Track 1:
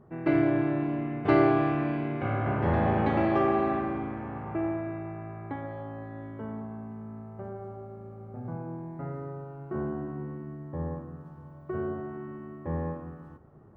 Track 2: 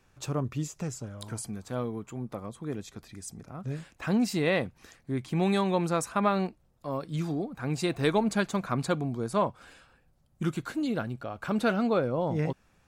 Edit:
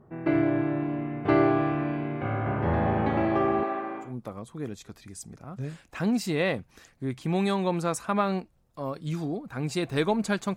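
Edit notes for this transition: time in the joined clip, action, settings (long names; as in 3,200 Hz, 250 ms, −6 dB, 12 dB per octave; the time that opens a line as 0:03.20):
track 1
0:03.63–0:04.14: high-pass filter 400 Hz 12 dB per octave
0:04.06: continue with track 2 from 0:02.13, crossfade 0.16 s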